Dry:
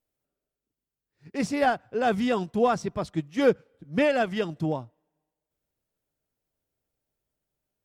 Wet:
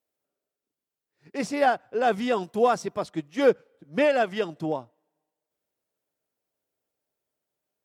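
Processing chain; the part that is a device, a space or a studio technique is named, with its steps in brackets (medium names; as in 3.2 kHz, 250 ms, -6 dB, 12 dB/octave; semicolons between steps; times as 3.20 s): filter by subtraction (in parallel: low-pass 500 Hz 12 dB/octave + polarity flip); 2.43–3.04 s: on the sum: treble shelf 8.6 kHz +9 dB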